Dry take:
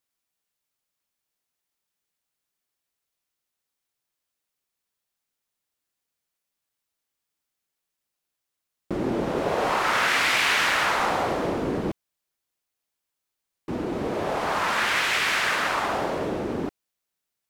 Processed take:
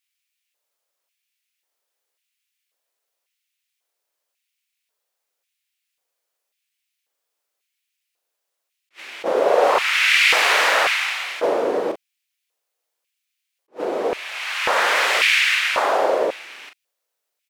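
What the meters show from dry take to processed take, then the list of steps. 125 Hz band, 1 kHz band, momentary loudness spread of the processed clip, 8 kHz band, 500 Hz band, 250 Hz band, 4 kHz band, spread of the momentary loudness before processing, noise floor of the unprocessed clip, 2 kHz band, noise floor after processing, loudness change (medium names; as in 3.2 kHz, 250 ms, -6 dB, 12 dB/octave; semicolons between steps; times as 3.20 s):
under -15 dB, +3.0 dB, 14 LU, +4.5 dB, +7.0 dB, -5.0 dB, +6.5 dB, 11 LU, -84 dBFS, +6.0 dB, -80 dBFS, +6.0 dB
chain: doubling 39 ms -6.5 dB; LFO high-pass square 0.92 Hz 510–2400 Hz; attacks held to a fixed rise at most 390 dB/s; trim +3 dB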